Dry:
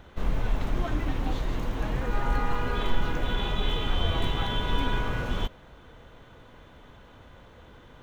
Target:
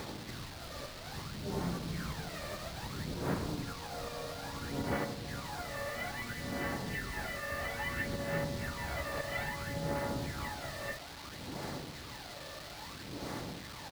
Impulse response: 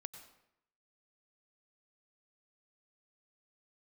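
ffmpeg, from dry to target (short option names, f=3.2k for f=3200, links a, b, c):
-filter_complex "[0:a]asplit=2[a][b];[b]aecho=0:1:50|609|710|858:0.668|0.422|0.119|0.473[c];[a][c]amix=inputs=2:normalize=0,acompressor=threshold=-29dB:ratio=5,asetrate=25442,aresample=44100,aphaser=in_gain=1:out_gain=1:delay=1.7:decay=0.69:speed=0.6:type=sinusoidal,equalizer=f=1.4k:t=o:w=0.64:g=3.5,alimiter=limit=-20dB:level=0:latency=1:release=381,asplit=3[d][e][f];[e]asetrate=52444,aresample=44100,atempo=0.840896,volume=-15dB[g];[f]asetrate=66075,aresample=44100,atempo=0.66742,volume=-14dB[h];[d][g][h]amix=inputs=3:normalize=0,acrusher=bits=7:mix=0:aa=0.000001,highpass=110,equalizer=f=4.3k:t=o:w=0.76:g=8.5"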